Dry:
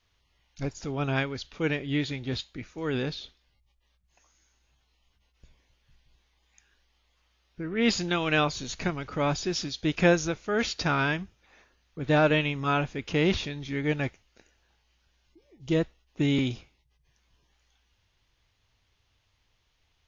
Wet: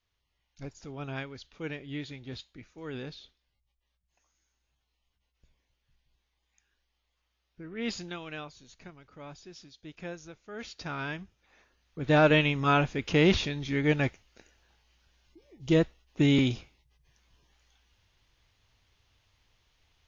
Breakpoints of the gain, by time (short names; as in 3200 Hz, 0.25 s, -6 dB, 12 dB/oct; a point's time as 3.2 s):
7.99 s -9.5 dB
8.53 s -19 dB
10.17 s -19 dB
11.19 s -7.5 dB
12.4 s +2 dB